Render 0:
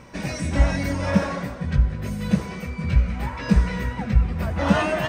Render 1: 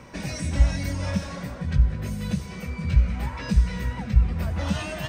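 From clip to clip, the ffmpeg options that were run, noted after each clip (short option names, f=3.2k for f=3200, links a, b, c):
-filter_complex "[0:a]acrossover=split=150|3000[a][b][c];[b]acompressor=threshold=-34dB:ratio=4[d];[a][d][c]amix=inputs=3:normalize=0"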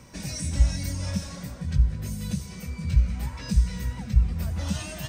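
-af "bass=f=250:g=6,treble=f=4k:g=13,volume=-7.5dB"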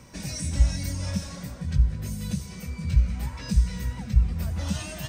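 -af anull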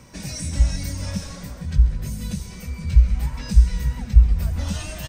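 -filter_complex "[0:a]asubboost=boost=5.5:cutoff=51,asplit=4[a][b][c][d];[b]adelay=135,afreqshift=-100,volume=-14dB[e];[c]adelay=270,afreqshift=-200,volume=-23.6dB[f];[d]adelay=405,afreqshift=-300,volume=-33.3dB[g];[a][e][f][g]amix=inputs=4:normalize=0,volume=2dB"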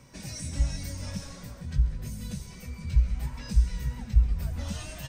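-af "flanger=delay=7:depth=2.1:regen=63:speed=1.6:shape=triangular,volume=-2.5dB"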